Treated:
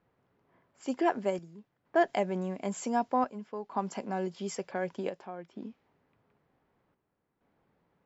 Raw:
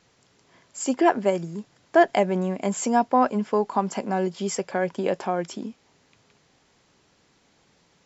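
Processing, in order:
square-wave tremolo 0.54 Hz, depth 60%, duty 75%
low-pass that shuts in the quiet parts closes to 1,400 Hz, open at −20.5 dBFS
level −8.5 dB

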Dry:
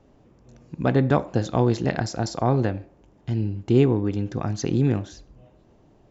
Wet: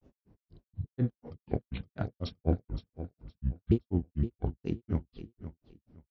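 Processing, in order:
pitch shifter swept by a sawtooth −11 semitones, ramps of 928 ms
low-shelf EQ 460 Hz +7 dB
healed spectral selection 0:00.40–0:00.94, 460–2,800 Hz before
hum removal 239 Hz, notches 13
granular cloud 132 ms, grains 4.1 per second, spray 15 ms, pitch spread up and down by 0 semitones
on a send: repeating echo 516 ms, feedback 22%, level −12.5 dB
on the sum: level −7.5 dB

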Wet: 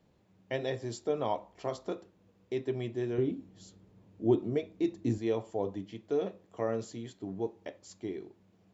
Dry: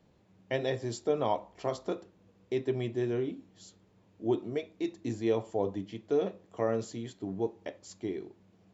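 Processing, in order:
0:03.18–0:05.18: low-shelf EQ 450 Hz +9 dB
level −2.5 dB

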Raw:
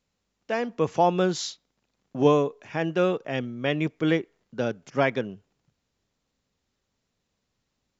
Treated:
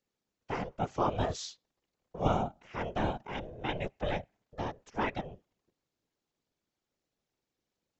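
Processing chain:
ring modulation 280 Hz
random phases in short frames
level −6 dB

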